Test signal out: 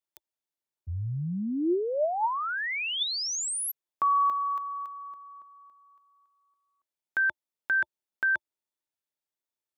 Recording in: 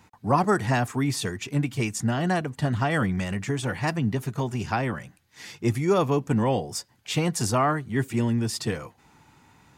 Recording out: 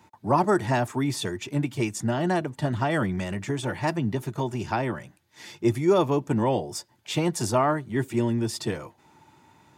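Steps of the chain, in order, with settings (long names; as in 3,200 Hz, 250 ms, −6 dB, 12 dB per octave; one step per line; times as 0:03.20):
high-pass filter 71 Hz 24 dB per octave
hollow resonant body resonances 350/610/890/3,500 Hz, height 8 dB, ringing for 40 ms
level −2.5 dB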